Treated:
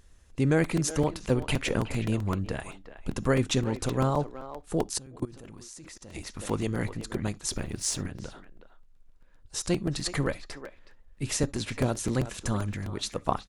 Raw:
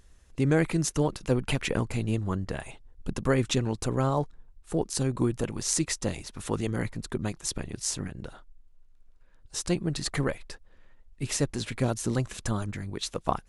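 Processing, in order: 7.51–8.01 G.711 law mismatch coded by mu; speakerphone echo 0.37 s, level -12 dB; on a send at -19 dB: reverb, pre-delay 3 ms; 4.98–6.15 on the sum: level quantiser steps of 23 dB; crackling interface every 0.13 s, samples 128, repeat, from 0.64

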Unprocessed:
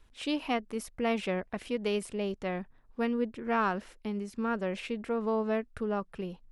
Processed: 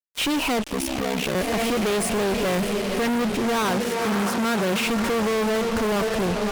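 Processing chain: on a send: diffused feedback echo 0.541 s, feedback 49%, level -12 dB; on the sum: fuzz box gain 53 dB, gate -49 dBFS; 0.69–1.35 ring modulator 33 Hz; 3.63–4.87 HPF 79 Hz 12 dB/oct; gain -8 dB

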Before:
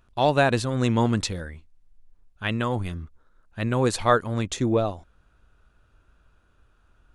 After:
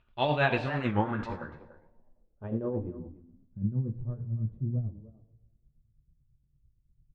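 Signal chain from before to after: two-slope reverb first 0.42 s, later 1.5 s, from -16 dB, DRR 2 dB; tremolo 9 Hz, depth 61%; speakerphone echo 0.29 s, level -11 dB; low-pass sweep 2900 Hz -> 140 Hz, 0.46–4; record warp 45 rpm, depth 160 cents; gain -6.5 dB

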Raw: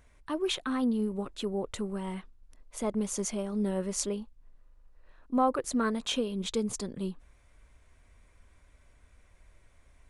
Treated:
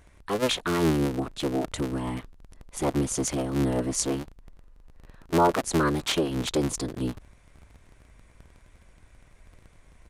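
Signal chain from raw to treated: cycle switcher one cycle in 3, inverted; downsampling 32000 Hz; gain +5 dB

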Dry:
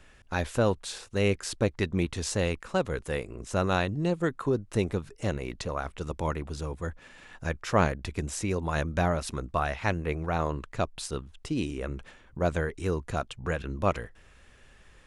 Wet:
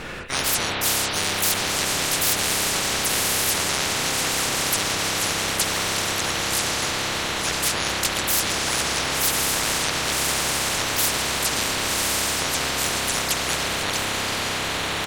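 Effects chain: spectral noise reduction 8 dB; high shelf 3500 Hz -6.5 dB; diffused feedback echo 1.108 s, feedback 53%, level -8 dB; limiter -20 dBFS, peak gain reduction 9.5 dB; harmoniser -3 st 0 dB, +7 st -3 dB; spring tank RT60 4 s, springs 30 ms, chirp 40 ms, DRR 1 dB; spectral compressor 10:1; gain +6 dB

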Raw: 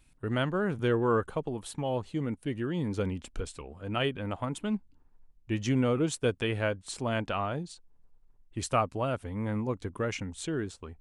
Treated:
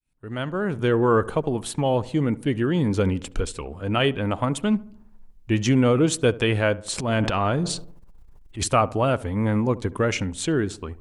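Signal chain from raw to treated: opening faded in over 1.26 s; in parallel at -2.5 dB: limiter -23.5 dBFS, peak gain reduction 9.5 dB; on the sum: darkening echo 72 ms, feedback 54%, low-pass 1300 Hz, level -18.5 dB; 6.97–8.68 transient shaper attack -10 dB, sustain +10 dB; gain +5 dB

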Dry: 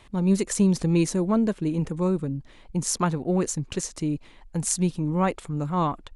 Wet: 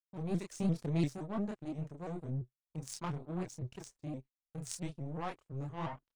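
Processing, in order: gate -37 dBFS, range -12 dB; pitch shift -1 st; in parallel at -5 dB: soft clip -16 dBFS, distortion -18 dB; on the sum: bell 130 Hz +10.5 dB 0.25 oct; power-law curve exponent 2; chorus voices 4, 0.34 Hz, delay 28 ms, depth 4.5 ms; shaped vibrato saw up 5.8 Hz, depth 160 cents; gain -7.5 dB

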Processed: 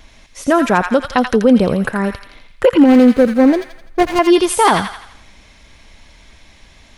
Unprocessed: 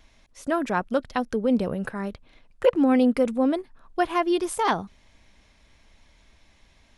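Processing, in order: 2.85–4.19 median filter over 41 samples; thin delay 84 ms, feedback 47%, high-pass 1500 Hz, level -4 dB; maximiser +13.5 dB; gain -1 dB

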